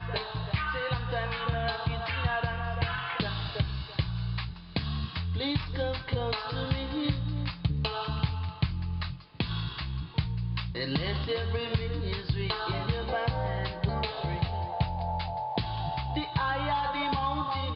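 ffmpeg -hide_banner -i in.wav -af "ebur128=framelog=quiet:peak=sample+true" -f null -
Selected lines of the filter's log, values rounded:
Integrated loudness:
  I:         -31.6 LUFS
  Threshold: -41.6 LUFS
Loudness range:
  LRA:         1.6 LU
  Threshold: -51.7 LUFS
  LRA low:   -32.6 LUFS
  LRA high:  -31.0 LUFS
Sample peak:
  Peak:      -13.6 dBFS
True peak:
  Peak:      -13.5 dBFS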